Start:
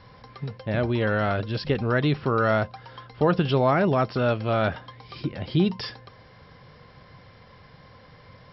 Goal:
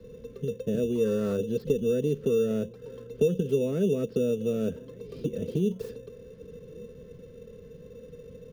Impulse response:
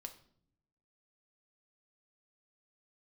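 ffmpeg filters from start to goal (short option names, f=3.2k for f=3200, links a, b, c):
-filter_complex "[0:a]firequalizer=gain_entry='entry(290,0);entry(490,10);entry(720,-26);entry(1400,-17)':delay=0.05:min_phase=1,acrossover=split=100|350[a][b][c];[a]acompressor=threshold=-49dB:ratio=4[d];[b]acompressor=threshold=-32dB:ratio=4[e];[c]acompressor=threshold=-35dB:ratio=4[f];[d][e][f]amix=inputs=3:normalize=0,asettb=1/sr,asplit=3[g][h][i];[g]atrim=end=0.954[j];[h]atrim=start=0.95:end=1.37,asetpts=PTS-STARTPTS,afade=t=in:d=0.004:c=qsin,afade=t=out:st=0.416:d=0.004:c=qsin,equalizer=f=1.1k:t=o:w=0.58:g=14.5[k];[i]atrim=start=1.366[l];[j][k]acrossfade=d=0.004:c1=hsin:c2=qsin[m];[m][l]acrossfade=d=0.004:c1=qsin:c2=hsin,acrossover=split=110|1600[n][o][p];[p]aeval=exprs='(mod(355*val(0)+1,2)-1)/355':c=same[q];[n][o][q]amix=inputs=3:normalize=0,aecho=1:1:4.5:0.58,asplit=2[r][s];[s]acrusher=samples=14:mix=1:aa=0.000001,volume=-9dB[t];[r][t]amix=inputs=2:normalize=0,asplit=2[u][v];[v]adelay=1166,volume=-24dB,highshelf=f=4k:g=-26.2[w];[u][w]amix=inputs=2:normalize=0"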